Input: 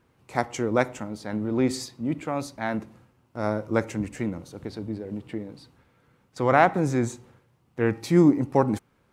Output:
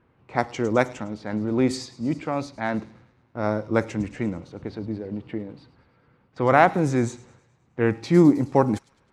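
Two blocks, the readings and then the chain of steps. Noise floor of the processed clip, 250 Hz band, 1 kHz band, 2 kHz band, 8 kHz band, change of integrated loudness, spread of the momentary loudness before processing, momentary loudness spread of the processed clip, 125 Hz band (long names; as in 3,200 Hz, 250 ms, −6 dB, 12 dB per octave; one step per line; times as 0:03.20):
−63 dBFS, +2.0 dB, +2.0 dB, +2.0 dB, −1.5 dB, +2.0 dB, 17 LU, 16 LU, +2.0 dB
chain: on a send: delay with a high-pass on its return 105 ms, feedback 65%, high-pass 4,600 Hz, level −11 dB
on the sum: low-pass that shuts in the quiet parts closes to 2,500 Hz, open at −16.5 dBFS
level +2 dB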